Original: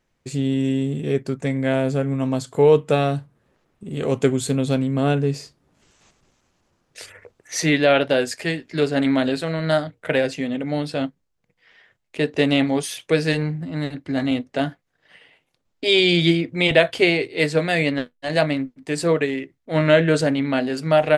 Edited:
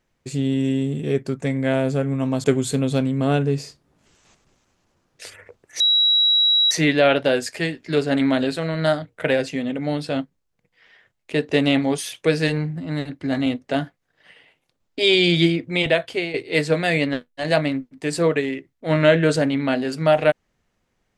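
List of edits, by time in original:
2.44–4.2 cut
7.56 add tone 3880 Hz -13.5 dBFS 0.91 s
16.4–17.19 fade out, to -11 dB

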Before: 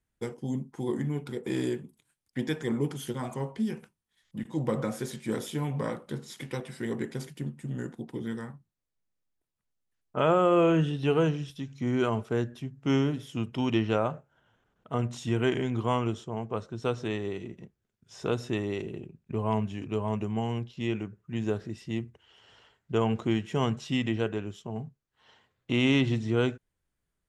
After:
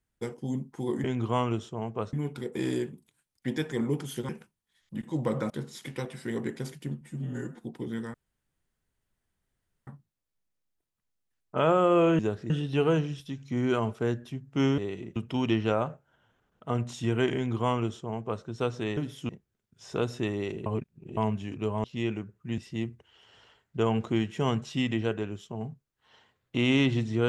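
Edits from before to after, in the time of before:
3.2–3.71 cut
4.92–6.05 cut
7.56–7.98 stretch 1.5×
8.48 insert room tone 1.73 s
13.08–13.4 swap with 17.21–17.59
15.59–16.68 copy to 1.04
18.96–19.47 reverse
20.14–20.68 cut
21.42–21.73 move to 10.8

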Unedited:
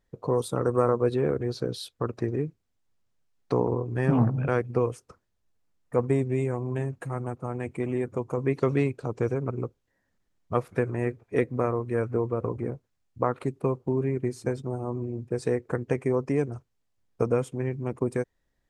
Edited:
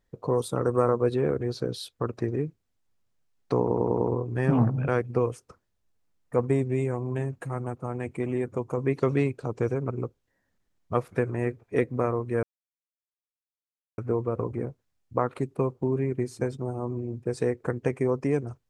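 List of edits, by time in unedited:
3.61 stutter 0.10 s, 5 plays
12.03 insert silence 1.55 s

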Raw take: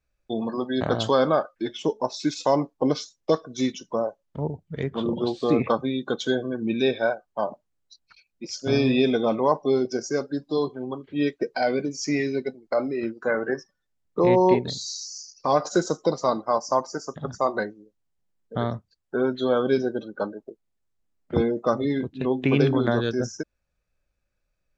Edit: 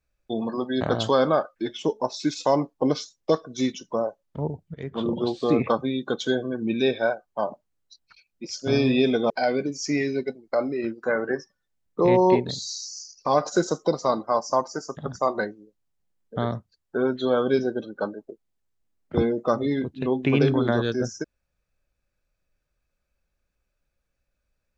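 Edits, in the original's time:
4.74–5.01 fade in, from -14.5 dB
9.3–11.49 cut

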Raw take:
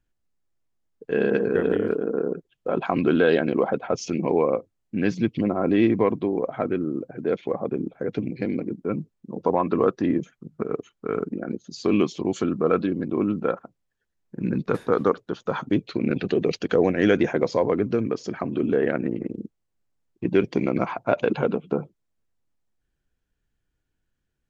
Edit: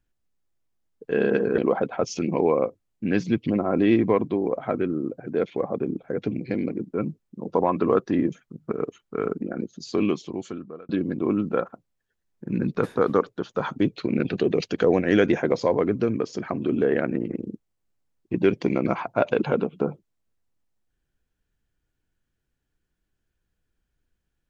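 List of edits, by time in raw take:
1.58–3.49 cut
11.68–12.8 fade out

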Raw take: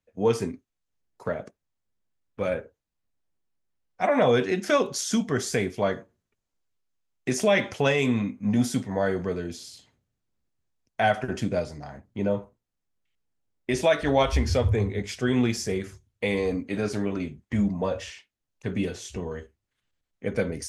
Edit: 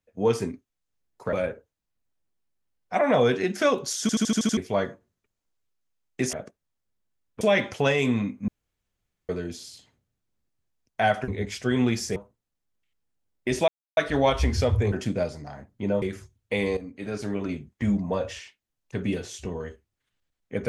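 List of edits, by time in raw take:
1.33–2.41 move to 7.41
5.09 stutter in place 0.08 s, 7 plays
8.48–9.29 room tone
11.28–12.38 swap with 14.85–15.73
13.9 insert silence 0.29 s
16.48–17.21 fade in, from -13 dB

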